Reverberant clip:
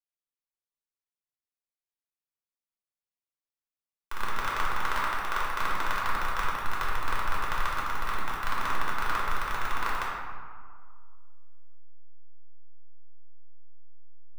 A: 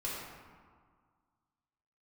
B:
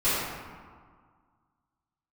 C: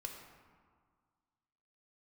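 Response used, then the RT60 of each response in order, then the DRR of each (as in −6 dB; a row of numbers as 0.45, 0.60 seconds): A; 1.8, 1.8, 1.8 seconds; −6.5, −15.5, 2.0 decibels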